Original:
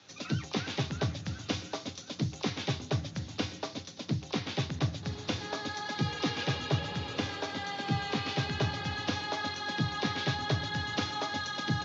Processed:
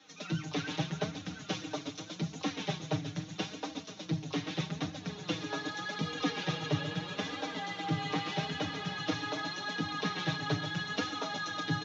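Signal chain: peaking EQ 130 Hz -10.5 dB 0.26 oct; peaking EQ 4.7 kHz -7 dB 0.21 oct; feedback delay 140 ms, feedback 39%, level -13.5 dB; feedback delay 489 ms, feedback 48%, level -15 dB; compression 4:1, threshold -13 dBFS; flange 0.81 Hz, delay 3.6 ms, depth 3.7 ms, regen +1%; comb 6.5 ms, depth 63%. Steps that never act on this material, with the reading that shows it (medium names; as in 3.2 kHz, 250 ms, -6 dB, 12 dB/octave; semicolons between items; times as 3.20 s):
compression, threshold -13 dBFS: peak at its input -17.5 dBFS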